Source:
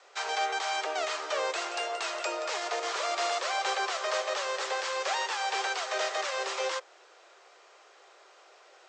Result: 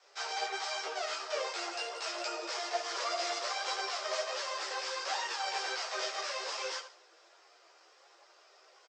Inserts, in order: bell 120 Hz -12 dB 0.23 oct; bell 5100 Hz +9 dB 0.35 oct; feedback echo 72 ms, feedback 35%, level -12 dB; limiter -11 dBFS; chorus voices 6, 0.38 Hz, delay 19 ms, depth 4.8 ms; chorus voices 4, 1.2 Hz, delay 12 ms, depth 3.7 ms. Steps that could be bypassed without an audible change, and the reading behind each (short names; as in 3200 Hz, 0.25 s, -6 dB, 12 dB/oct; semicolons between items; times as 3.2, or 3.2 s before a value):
bell 120 Hz: input band starts at 300 Hz; limiter -11 dBFS: input peak -15.5 dBFS